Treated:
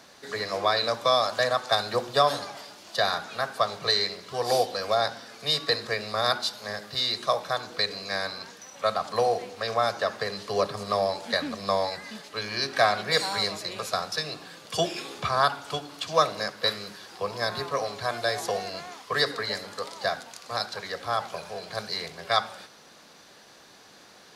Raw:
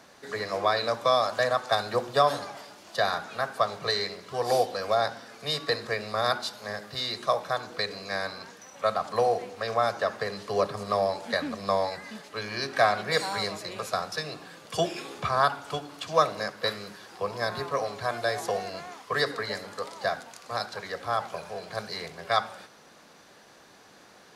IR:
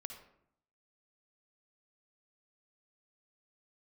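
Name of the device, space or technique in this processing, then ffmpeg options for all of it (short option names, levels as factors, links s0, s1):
presence and air boost: -af "equalizer=f=4200:t=o:w=1.3:g=5,highshelf=f=10000:g=4"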